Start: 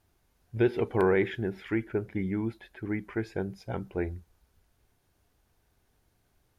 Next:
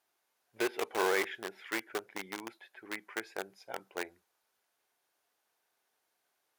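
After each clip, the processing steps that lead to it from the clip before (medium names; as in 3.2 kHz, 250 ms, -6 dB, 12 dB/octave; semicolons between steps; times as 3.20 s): in parallel at -6 dB: bit crusher 4-bit; on the sum: high-pass 620 Hz 12 dB/octave; trim -3.5 dB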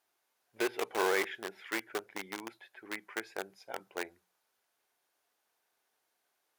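hum notches 60/120/180 Hz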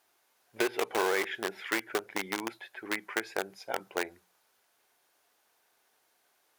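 compression 3:1, threshold -35 dBFS, peak gain reduction 8 dB; trim +8.5 dB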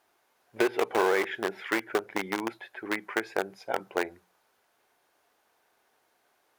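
treble shelf 2.5 kHz -9 dB; trim +5 dB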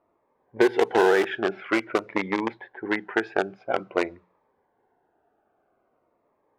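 low-pass 3.8 kHz 6 dB/octave; level-controlled noise filter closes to 890 Hz, open at -21.5 dBFS; Shepard-style phaser falling 0.49 Hz; trim +7.5 dB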